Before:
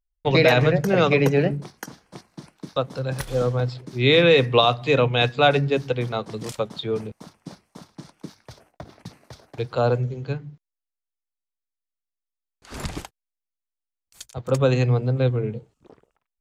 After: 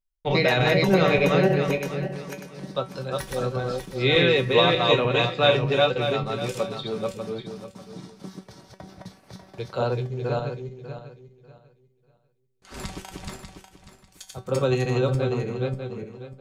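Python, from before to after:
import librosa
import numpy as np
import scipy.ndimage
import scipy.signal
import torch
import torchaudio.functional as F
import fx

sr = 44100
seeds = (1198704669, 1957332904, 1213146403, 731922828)

y = fx.reverse_delay_fb(x, sr, ms=297, feedback_pct=47, wet_db=-1.5)
y = fx.comb_fb(y, sr, f0_hz=190.0, decay_s=0.2, harmonics='all', damping=0.0, mix_pct=80)
y = y * librosa.db_to_amplitude(5.0)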